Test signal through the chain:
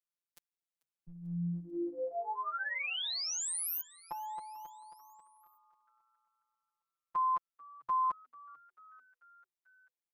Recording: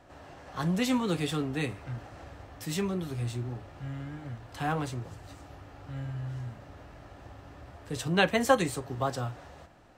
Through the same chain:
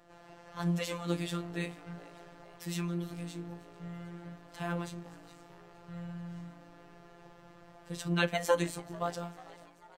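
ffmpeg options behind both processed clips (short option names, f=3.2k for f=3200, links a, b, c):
-filter_complex "[0:a]afftfilt=real='hypot(re,im)*cos(PI*b)':imag='0':win_size=1024:overlap=0.75,asplit=5[a][b][c][d][e];[b]adelay=441,afreqshift=120,volume=-23dB[f];[c]adelay=882,afreqshift=240,volume=-27.3dB[g];[d]adelay=1323,afreqshift=360,volume=-31.6dB[h];[e]adelay=1764,afreqshift=480,volume=-35.9dB[i];[a][f][g][h][i]amix=inputs=5:normalize=0,volume=-1.5dB"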